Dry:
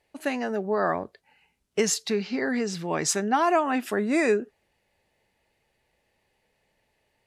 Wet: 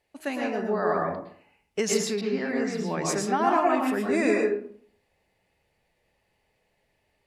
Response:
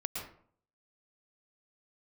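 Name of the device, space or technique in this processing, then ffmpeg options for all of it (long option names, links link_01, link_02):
bathroom: -filter_complex "[1:a]atrim=start_sample=2205[link_01];[0:a][link_01]afir=irnorm=-1:irlink=0,asettb=1/sr,asplit=3[link_02][link_03][link_04];[link_02]atrim=end=2.214[link_05];[link_03]atrim=start=2.21:end=3.7,asetpts=PTS-STARTPTS,afade=type=in:duration=0.004:curve=qsin,afade=type=out:start_time=1.486:duration=0.004:curve=qsin,adynamicequalizer=threshold=0.0126:dfrequency=2200:dqfactor=0.7:tfrequency=2200:tqfactor=0.7:attack=5:release=100:ratio=0.375:range=2:mode=cutabove:tftype=highshelf[link_06];[link_04]atrim=start=3.696[link_07];[link_05][link_06]acrossfade=duration=0.004:curve1=hsin:curve2=qsin[link_08];[link_08][link_07]acrossfade=duration=0.004:curve1=qsin:curve2=hsin,volume=-2dB"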